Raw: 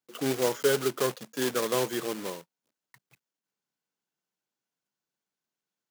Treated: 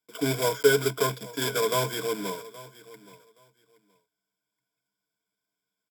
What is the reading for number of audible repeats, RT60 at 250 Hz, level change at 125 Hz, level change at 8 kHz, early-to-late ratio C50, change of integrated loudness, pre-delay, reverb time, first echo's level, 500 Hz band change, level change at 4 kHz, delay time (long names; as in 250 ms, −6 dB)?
2, no reverb audible, +6.5 dB, +2.5 dB, no reverb audible, +3.0 dB, no reverb audible, no reverb audible, −19.0 dB, +2.5 dB, +4.0 dB, 822 ms